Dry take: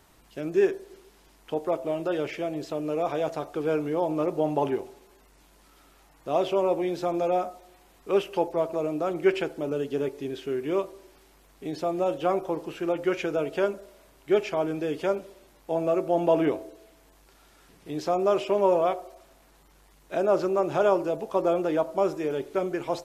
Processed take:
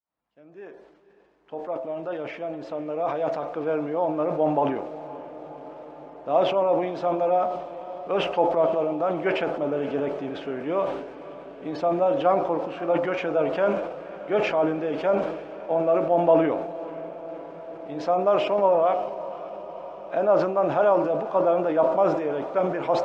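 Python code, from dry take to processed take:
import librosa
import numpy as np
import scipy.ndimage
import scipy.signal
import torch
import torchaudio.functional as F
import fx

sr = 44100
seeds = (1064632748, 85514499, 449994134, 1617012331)

p1 = fx.fade_in_head(x, sr, length_s=4.9)
p2 = fx.peak_eq(p1, sr, hz=380.0, db=-11.5, octaves=0.33)
p3 = fx.rider(p2, sr, range_db=3, speed_s=2.0)
p4 = p2 + (p3 * librosa.db_to_amplitude(-3.0))
p5 = fx.transient(p4, sr, attack_db=1, sustain_db=5)
p6 = fx.bandpass_q(p5, sr, hz=650.0, q=0.53)
p7 = fx.air_absorb(p6, sr, metres=67.0)
p8 = fx.echo_diffused(p7, sr, ms=541, feedback_pct=73, wet_db=-15.5)
y = fx.sustainer(p8, sr, db_per_s=58.0)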